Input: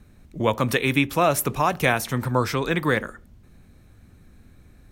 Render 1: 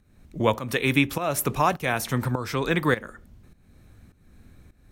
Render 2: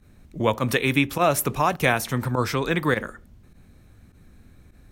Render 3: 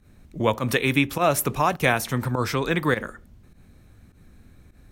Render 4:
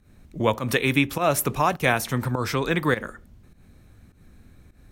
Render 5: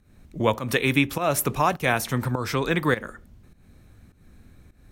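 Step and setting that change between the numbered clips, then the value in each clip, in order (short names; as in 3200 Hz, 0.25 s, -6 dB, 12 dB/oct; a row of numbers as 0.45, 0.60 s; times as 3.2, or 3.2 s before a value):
pump, release: 429, 61, 98, 155, 242 ms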